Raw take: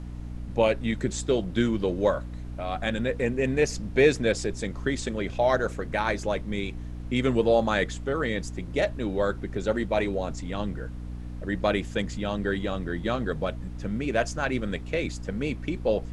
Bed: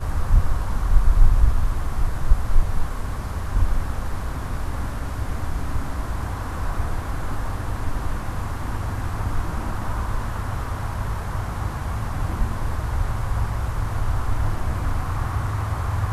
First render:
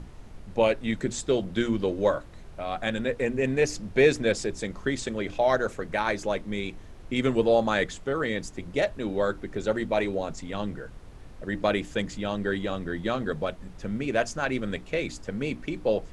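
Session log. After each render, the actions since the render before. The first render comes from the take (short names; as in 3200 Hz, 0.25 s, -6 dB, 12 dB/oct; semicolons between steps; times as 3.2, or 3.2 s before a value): notches 60/120/180/240/300 Hz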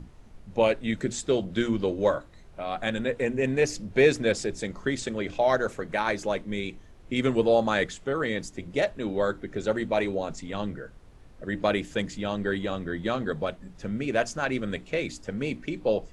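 noise print and reduce 6 dB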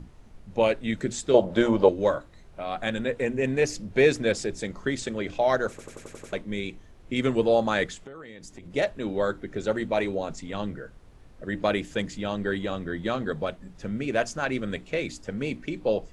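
1.34–1.89 small resonant body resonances 600/850 Hz, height 17 dB, ringing for 20 ms; 5.7 stutter in place 0.09 s, 7 plays; 7.94–8.73 compressor 20:1, threshold -38 dBFS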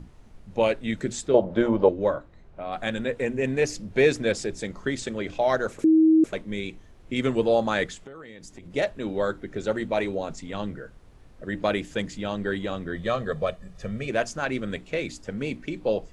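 1.28–2.73 LPF 1600 Hz 6 dB/oct; 5.84–6.24 bleep 318 Hz -13.5 dBFS; 12.95–14.1 comb 1.7 ms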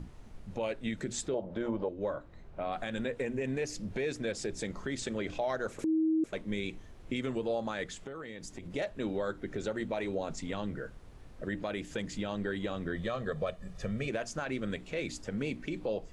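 compressor 3:1, threshold -31 dBFS, peak gain reduction 13.5 dB; limiter -23.5 dBFS, peak gain reduction 6 dB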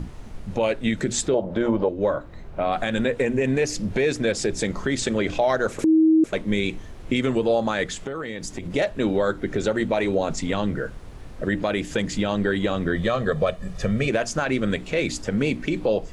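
gain +12 dB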